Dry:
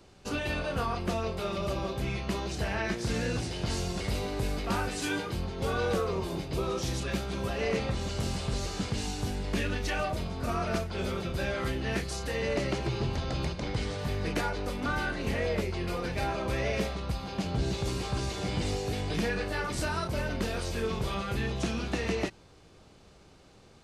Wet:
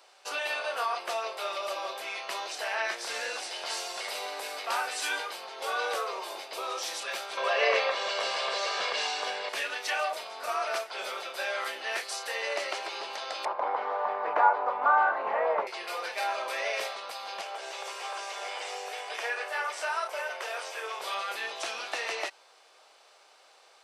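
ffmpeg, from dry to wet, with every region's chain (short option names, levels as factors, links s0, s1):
-filter_complex "[0:a]asettb=1/sr,asplit=3[s0][s1][s2];[s0]atrim=end=7.374[s3];[s1]atrim=start=7.37:end=9.49,asetpts=PTS-STARTPTS,afade=t=in:d=0.004:c=qsin,afade=t=out:st=2.116:d=0.004:c=qsin,aecho=1:1:1.8:0.42,atrim=end_sample=93492,acontrast=79,highpass=130,lowpass=4000[s4];[s2]atrim=start=9.486[s5];[s3][s4]acrossfade=d=0.004:c1=hsin:c2=qsin[s6];[s6][s5]acrossfade=d=0.004:c1=qsin:c2=hsin,asettb=1/sr,asplit=3[s7][s8][s9];[s7]atrim=end=13.454[s10];[s8]atrim=start=13.45:end=15.67,asetpts=PTS-STARTPTS,afade=t=in:d=0.004:c=qsin,afade=t=out:st=2.216:d=0.004:c=qsin,acontrast=34,lowpass=f=1000:t=q:w=2.6,asubboost=boost=5:cutoff=190[s11];[s9]atrim=start=15.666[s12];[s10][s11]acrossfade=d=0.004:c1=hsin:c2=qsin[s13];[s13][s12]acrossfade=d=0.004:c1=qsin:c2=hsin,asettb=1/sr,asplit=3[s14][s15][s16];[s14]atrim=end=17.414[s17];[s15]atrim=start=17.41:end=21,asetpts=PTS-STARTPTS,afade=t=in:d=0.004:c=qsin,afade=t=out:st=3.586:d=0.004:c=qsin,highpass=f=390:w=0.5412,highpass=f=390:w=1.3066,acrossover=split=6900[s18][s19];[s19]acompressor=threshold=0.00141:ratio=4:attack=1:release=60[s20];[s18][s20]amix=inputs=2:normalize=0,equalizer=f=4200:t=o:w=0.5:g=-8.5[s21];[s16]atrim=start=20.996[s22];[s17][s21]acrossfade=d=0.004:c1=hsin:c2=qsin[s23];[s23][s22]acrossfade=d=0.004:c1=qsin:c2=hsin,highpass=f=610:w=0.5412,highpass=f=610:w=1.3066,bandreject=f=6700:w=16,volume=1.5"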